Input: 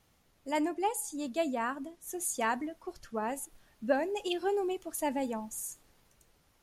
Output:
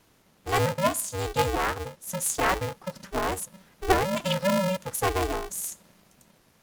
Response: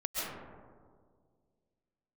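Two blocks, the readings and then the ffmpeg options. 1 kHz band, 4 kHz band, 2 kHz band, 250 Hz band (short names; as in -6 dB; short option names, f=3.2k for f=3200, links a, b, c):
+7.0 dB, +10.5 dB, +8.5 dB, +2.5 dB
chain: -af "aeval=exprs='val(0)*sgn(sin(2*PI*190*n/s))':c=same,volume=6.5dB"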